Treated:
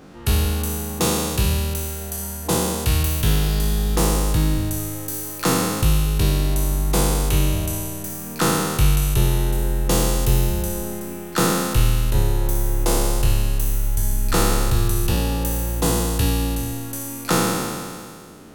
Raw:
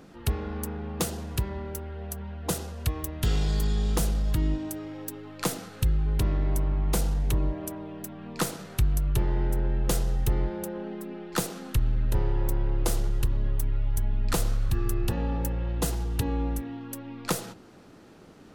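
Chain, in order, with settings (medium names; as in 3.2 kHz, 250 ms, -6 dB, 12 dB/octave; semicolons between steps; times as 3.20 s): spectral sustain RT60 2.12 s; trim +4 dB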